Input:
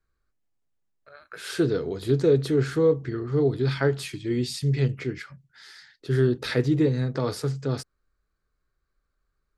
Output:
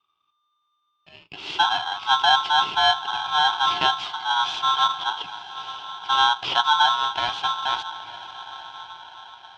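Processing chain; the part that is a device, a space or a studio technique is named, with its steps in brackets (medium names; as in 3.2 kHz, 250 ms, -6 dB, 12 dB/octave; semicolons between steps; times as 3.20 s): treble shelf 4.7 kHz +6 dB; echo that smears into a reverb 914 ms, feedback 49%, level -14 dB; ring modulator pedal into a guitar cabinet (polarity switched at an audio rate 1.2 kHz; cabinet simulation 80–4300 Hz, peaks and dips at 240 Hz -9 dB, 520 Hz -8 dB, 930 Hz +6 dB, 1.8 kHz -8 dB, 3.2 kHz +9 dB); trim +1 dB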